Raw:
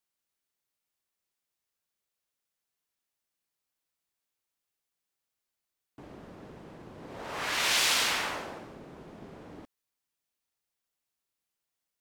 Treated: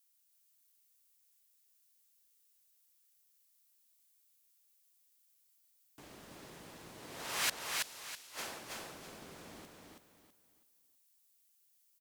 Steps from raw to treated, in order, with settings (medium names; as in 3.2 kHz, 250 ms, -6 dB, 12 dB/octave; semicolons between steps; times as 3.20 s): pre-emphasis filter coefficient 0.9; inverted gate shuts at -31 dBFS, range -34 dB; feedback delay 327 ms, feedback 30%, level -3 dB; trim +10.5 dB